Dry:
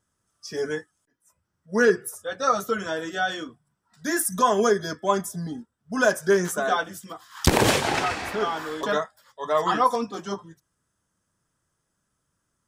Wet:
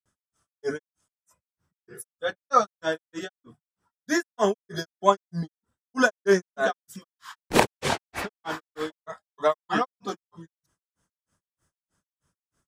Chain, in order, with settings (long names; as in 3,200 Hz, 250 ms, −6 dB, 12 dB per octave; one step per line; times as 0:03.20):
granular cloud 172 ms, grains 3.2 per second, pitch spread up and down by 0 semitones
level +4 dB